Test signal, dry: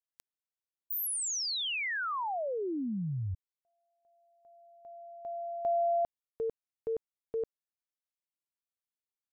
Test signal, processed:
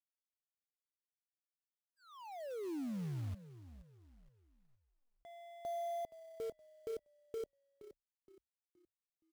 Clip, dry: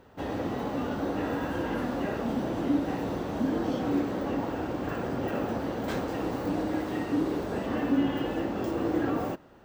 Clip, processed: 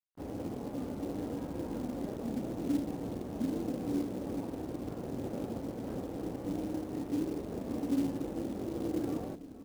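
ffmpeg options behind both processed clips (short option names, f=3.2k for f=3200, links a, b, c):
-filter_complex "[0:a]firequalizer=gain_entry='entry(300,0);entry(1700,-19);entry(4600,-29)':delay=0.05:min_phase=1,aeval=exprs='sgn(val(0))*max(abs(val(0))-0.00335,0)':c=same,asplit=5[a][b][c][d][e];[b]adelay=470,afreqshift=-32,volume=-15dB[f];[c]adelay=940,afreqshift=-64,volume=-23dB[g];[d]adelay=1410,afreqshift=-96,volume=-30.9dB[h];[e]adelay=1880,afreqshift=-128,volume=-38.9dB[i];[a][f][g][h][i]amix=inputs=5:normalize=0,acrusher=bits=5:mode=log:mix=0:aa=0.000001,volume=-5dB"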